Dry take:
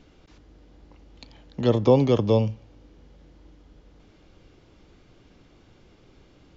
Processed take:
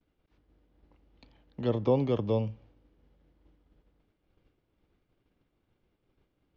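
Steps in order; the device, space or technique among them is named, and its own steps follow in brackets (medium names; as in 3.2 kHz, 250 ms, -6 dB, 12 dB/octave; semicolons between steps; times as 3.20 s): hearing-loss simulation (low-pass 3.5 kHz 12 dB/octave; expander -45 dBFS); trim -8 dB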